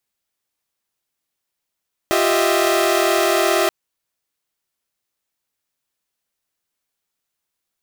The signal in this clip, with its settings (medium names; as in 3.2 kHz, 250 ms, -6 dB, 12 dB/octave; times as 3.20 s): chord F4/G4/D#5/E5 saw, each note -18 dBFS 1.58 s